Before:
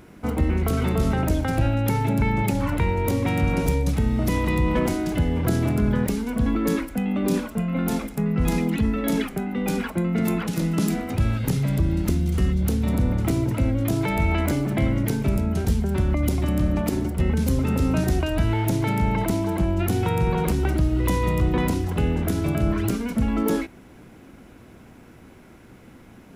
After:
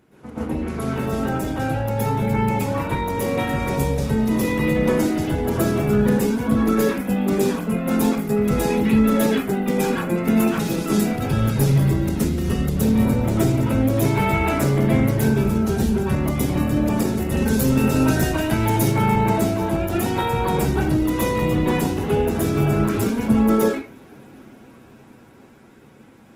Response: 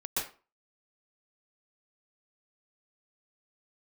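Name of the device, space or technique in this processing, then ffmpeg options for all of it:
far-field microphone of a smart speaker: -filter_complex "[0:a]asettb=1/sr,asplit=3[link_01][link_02][link_03];[link_01]atrim=end=16.964[link_04];[link_02]atrim=start=16.96:end=18.79,asetpts=PTS-STARTPTS,afade=type=in:duration=0.004:curve=qsin,afade=type=out:start_time=1.826:duration=0.004:curve=qsin,highshelf=frequency=3700:gain=5.5[link_05];[link_03]atrim=start=18.786[link_06];[link_04][link_05]acrossfade=duration=0.004:curve1=hsin:curve2=qsin[link_07];[link_07][link_06]acrossfade=duration=0.004:curve1=qsin:curve2=hsin[link_08];[1:a]atrim=start_sample=2205[link_09];[link_08][link_09]afir=irnorm=-1:irlink=0,highpass=100,dynaudnorm=framelen=550:gausssize=9:maxgain=11.5dB,volume=-5.5dB" -ar 48000 -c:a libopus -b:a 16k

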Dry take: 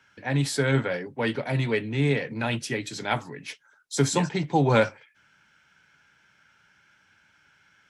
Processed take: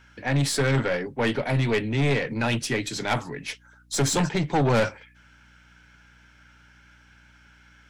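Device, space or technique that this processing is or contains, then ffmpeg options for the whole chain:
valve amplifier with mains hum: -af "aeval=exprs='(tanh(14.1*val(0)+0.3)-tanh(0.3))/14.1':channel_layout=same,aeval=exprs='val(0)+0.000794*(sin(2*PI*60*n/s)+sin(2*PI*2*60*n/s)/2+sin(2*PI*3*60*n/s)/3+sin(2*PI*4*60*n/s)/4+sin(2*PI*5*60*n/s)/5)':channel_layout=same,volume=5.5dB"

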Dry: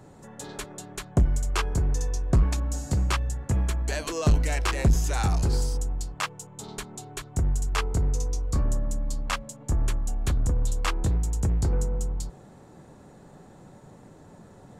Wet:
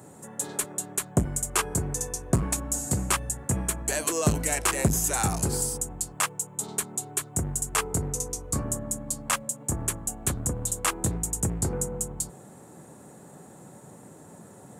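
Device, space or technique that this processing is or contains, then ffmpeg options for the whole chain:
budget condenser microphone: -af "highpass=120,highshelf=frequency=6600:width_type=q:width=1.5:gain=11,volume=2dB"

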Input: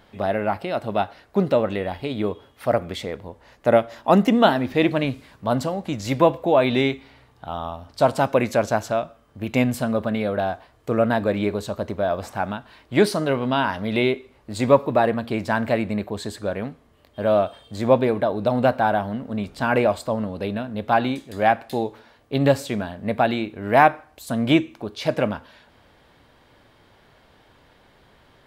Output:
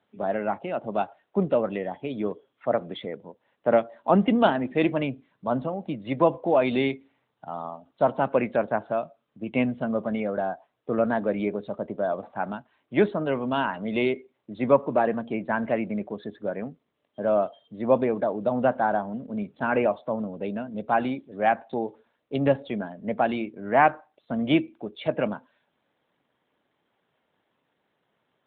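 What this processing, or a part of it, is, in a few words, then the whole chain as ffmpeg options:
mobile call with aggressive noise cancelling: -af "highpass=frequency=140:width=0.5412,highpass=frequency=140:width=1.3066,afftdn=noise_reduction=13:noise_floor=-37,volume=-3.5dB" -ar 8000 -c:a libopencore_amrnb -b:a 12200

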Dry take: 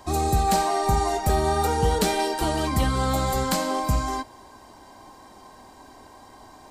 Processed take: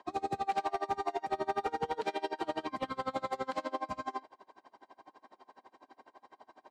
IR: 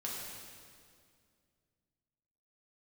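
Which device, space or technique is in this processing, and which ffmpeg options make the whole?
helicopter radio: -af "highpass=320,lowpass=3000,aeval=exprs='val(0)*pow(10,-28*(0.5-0.5*cos(2*PI*12*n/s))/20)':channel_layout=same,asoftclip=type=hard:threshold=-21dB,volume=-3.5dB"

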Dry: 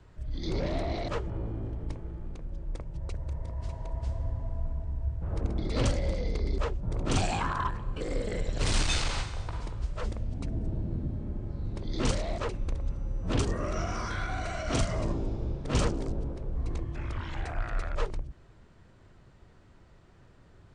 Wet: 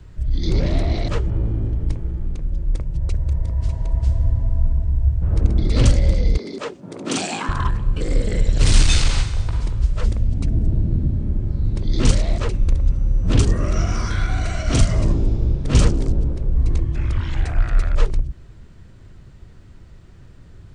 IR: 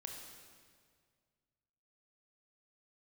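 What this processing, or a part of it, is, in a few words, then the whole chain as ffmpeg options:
smiley-face EQ: -filter_complex "[0:a]asettb=1/sr,asplit=3[link_01][link_02][link_03];[link_01]atrim=end=6.374[link_04];[link_02]atrim=start=6.37:end=7.49,asetpts=PTS-STARTPTS,afade=type=in:duration=0.004:curve=qsin,afade=type=out:start_time=1.116:duration=0.004:curve=qsin,highpass=frequency=220:width=0.5412,highpass=frequency=220:width=1.3066[link_05];[link_03]atrim=start=7.486[link_06];[link_04][link_05]acrossfade=duration=0.004:curve1=hsin:curve2=qsin[link_07];[link_07][link_06]acrossfade=duration=0.004:curve1=qsin:curve2=hsin,lowshelf=frequency=160:gain=7,equalizer=frequency=810:width_type=o:width=1.9:gain=-6,highshelf=frequency=8300:gain=4,volume=8.5dB"

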